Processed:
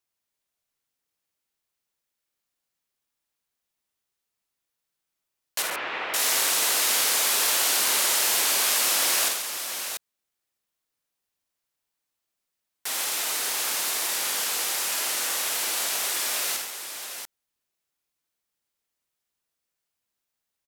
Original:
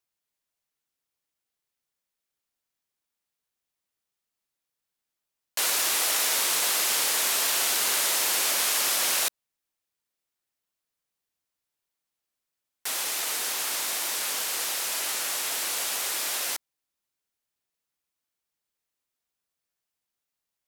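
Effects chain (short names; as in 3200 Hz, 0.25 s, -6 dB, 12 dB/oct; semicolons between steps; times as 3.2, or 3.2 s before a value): 5.62–6.14 LPF 2600 Hz 24 dB/oct; tapped delay 51/80/137/688 ms -6.5/-8.5/-10/-7 dB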